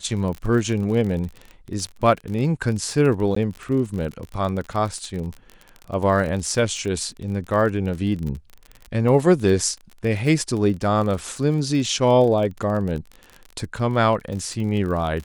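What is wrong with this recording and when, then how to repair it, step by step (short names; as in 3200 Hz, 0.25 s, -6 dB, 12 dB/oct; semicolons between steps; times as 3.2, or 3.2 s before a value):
crackle 37/s -28 dBFS
3.35–3.36 gap 14 ms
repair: de-click; interpolate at 3.35, 14 ms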